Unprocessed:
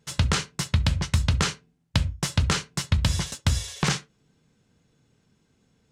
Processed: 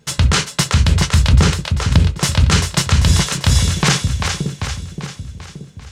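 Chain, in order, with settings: 1.32–2.00 s: tilt shelf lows +5 dB, about 730 Hz; on a send: two-band feedback delay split 450 Hz, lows 575 ms, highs 393 ms, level -7.5 dB; on the sum: loudness maximiser +13 dB; trim -1 dB

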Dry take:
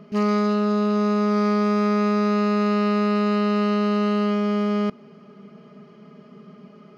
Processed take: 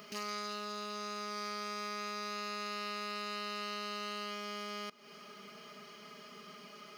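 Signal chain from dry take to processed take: compression 12:1, threshold -33 dBFS, peak gain reduction 16 dB; differentiator; trim +16.5 dB

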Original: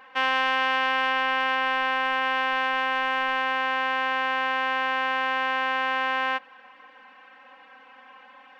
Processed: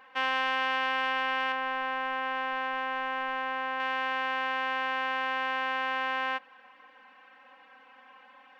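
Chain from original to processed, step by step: 1.52–3.80 s: treble shelf 2.5 kHz -9 dB; trim -5 dB

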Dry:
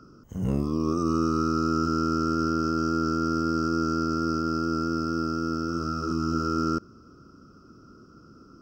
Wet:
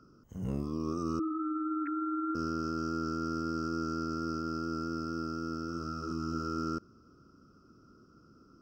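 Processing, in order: 1.19–2.35 s: formants replaced by sine waves; trim -8.5 dB

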